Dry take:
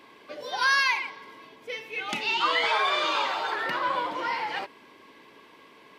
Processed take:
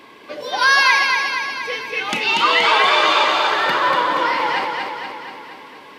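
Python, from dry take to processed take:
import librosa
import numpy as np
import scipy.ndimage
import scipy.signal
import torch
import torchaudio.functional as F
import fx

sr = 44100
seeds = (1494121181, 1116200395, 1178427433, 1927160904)

y = fx.echo_feedback(x, sr, ms=237, feedback_pct=59, wet_db=-4.0)
y = F.gain(torch.from_numpy(y), 8.5).numpy()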